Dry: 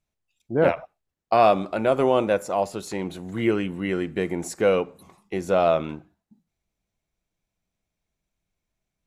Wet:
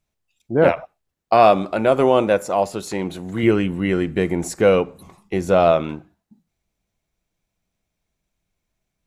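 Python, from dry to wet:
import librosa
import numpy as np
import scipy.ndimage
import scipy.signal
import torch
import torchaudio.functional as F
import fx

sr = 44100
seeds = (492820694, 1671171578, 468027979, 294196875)

y = fx.low_shelf(x, sr, hz=120.0, db=9.0, at=(3.43, 5.72))
y = y * librosa.db_to_amplitude(4.5)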